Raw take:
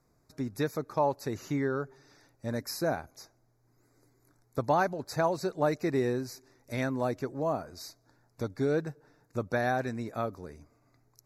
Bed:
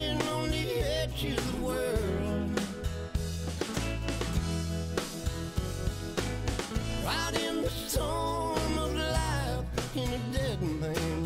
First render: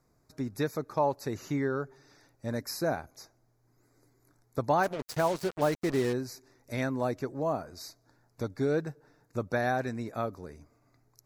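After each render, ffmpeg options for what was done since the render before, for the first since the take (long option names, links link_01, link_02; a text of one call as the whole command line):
ffmpeg -i in.wav -filter_complex "[0:a]asplit=3[link_01][link_02][link_03];[link_01]afade=type=out:start_time=4.82:duration=0.02[link_04];[link_02]acrusher=bits=5:mix=0:aa=0.5,afade=type=in:start_time=4.82:duration=0.02,afade=type=out:start_time=6.12:duration=0.02[link_05];[link_03]afade=type=in:start_time=6.12:duration=0.02[link_06];[link_04][link_05][link_06]amix=inputs=3:normalize=0" out.wav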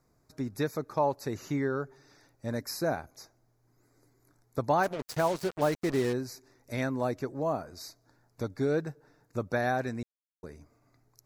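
ffmpeg -i in.wav -filter_complex "[0:a]asplit=3[link_01][link_02][link_03];[link_01]atrim=end=10.03,asetpts=PTS-STARTPTS,afade=type=out:start_time=10.026:duration=0.004:curve=hsin[link_04];[link_02]atrim=start=10.03:end=10.43,asetpts=PTS-STARTPTS,volume=0[link_05];[link_03]atrim=start=10.43,asetpts=PTS-STARTPTS,afade=type=in:duration=0.004:curve=hsin[link_06];[link_04][link_05][link_06]concat=n=3:v=0:a=1" out.wav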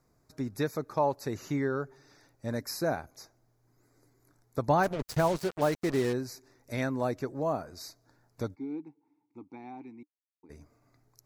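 ffmpeg -i in.wav -filter_complex "[0:a]asettb=1/sr,asplit=3[link_01][link_02][link_03];[link_01]atrim=end=4.684[link_04];[link_02]atrim=start=4.68:end=5.38,asetpts=PTS-STARTPTS,afade=type=in:duration=0.004:curve=qsin,afade=type=out:start_time=0.696:duration=0.004:curve=qsin,lowshelf=frequency=150:gain=11.5[link_05];[link_03]atrim=start=5.376[link_06];[link_04][link_05]acrossfade=duration=0.004:curve1=hsin:curve2=qsin[link_07];[link_07][link_06]acrossfade=duration=0.004:curve1=qsin:curve2=hsin,asplit=3[link_08][link_09][link_10];[link_08]afade=type=out:start_time=8.54:duration=0.02[link_11];[link_09]asplit=3[link_12][link_13][link_14];[link_12]bandpass=frequency=300:width_type=q:width=8,volume=0dB[link_15];[link_13]bandpass=frequency=870:width_type=q:width=8,volume=-6dB[link_16];[link_14]bandpass=frequency=2240:width_type=q:width=8,volume=-9dB[link_17];[link_15][link_16][link_17]amix=inputs=3:normalize=0,afade=type=in:start_time=8.54:duration=0.02,afade=type=out:start_time=10.49:duration=0.02[link_18];[link_10]afade=type=in:start_time=10.49:duration=0.02[link_19];[link_11][link_18][link_19]amix=inputs=3:normalize=0" out.wav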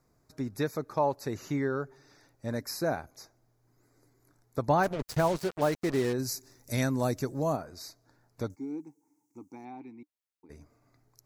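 ffmpeg -i in.wav -filter_complex "[0:a]asplit=3[link_01][link_02][link_03];[link_01]afade=type=out:start_time=6.18:duration=0.02[link_04];[link_02]bass=frequency=250:gain=6,treble=frequency=4000:gain=13,afade=type=in:start_time=6.18:duration=0.02,afade=type=out:start_time=7.55:duration=0.02[link_05];[link_03]afade=type=in:start_time=7.55:duration=0.02[link_06];[link_04][link_05][link_06]amix=inputs=3:normalize=0,asettb=1/sr,asplit=3[link_07][link_08][link_09];[link_07]atrim=end=8.504[link_10];[link_08]atrim=start=8.5:end=9.65,asetpts=PTS-STARTPTS,afade=type=in:duration=0.004:curve=qsin,afade=type=out:start_time=1.146:duration=0.004:curve=qsin,highshelf=frequency=4800:width_type=q:width=3:gain=11.5[link_11];[link_09]atrim=start=9.646[link_12];[link_10][link_11]acrossfade=duration=0.004:curve1=hsin:curve2=qsin[link_13];[link_13][link_12]acrossfade=duration=0.004:curve1=qsin:curve2=hsin" out.wav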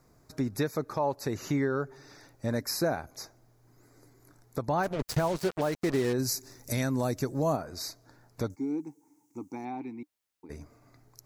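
ffmpeg -i in.wav -filter_complex "[0:a]asplit=2[link_01][link_02];[link_02]acompressor=threshold=-38dB:ratio=6,volume=2.5dB[link_03];[link_01][link_03]amix=inputs=2:normalize=0,alimiter=limit=-18dB:level=0:latency=1:release=233" out.wav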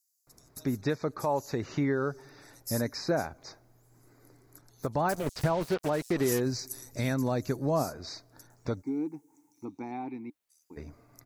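ffmpeg -i in.wav -filter_complex "[0:a]acrossover=split=5800[link_01][link_02];[link_01]adelay=270[link_03];[link_03][link_02]amix=inputs=2:normalize=0" out.wav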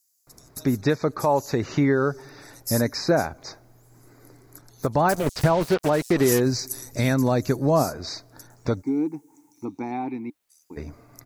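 ffmpeg -i in.wav -af "volume=8dB" out.wav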